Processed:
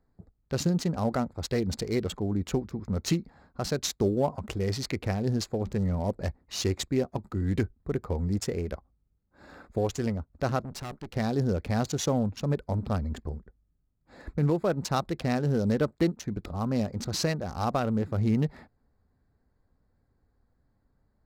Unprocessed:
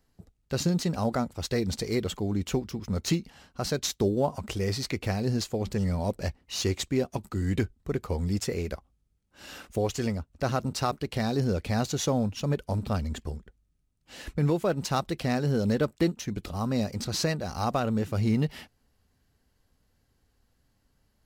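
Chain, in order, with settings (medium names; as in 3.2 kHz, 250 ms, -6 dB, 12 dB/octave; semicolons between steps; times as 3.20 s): local Wiener filter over 15 samples; 10.62–11.15 s: valve stage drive 34 dB, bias 0.65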